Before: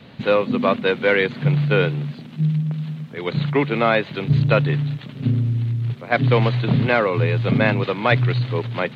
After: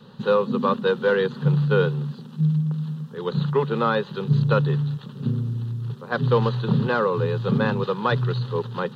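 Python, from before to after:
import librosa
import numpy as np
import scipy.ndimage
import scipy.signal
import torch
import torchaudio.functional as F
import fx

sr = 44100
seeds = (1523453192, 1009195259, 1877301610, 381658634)

y = fx.fixed_phaser(x, sr, hz=440.0, stages=8)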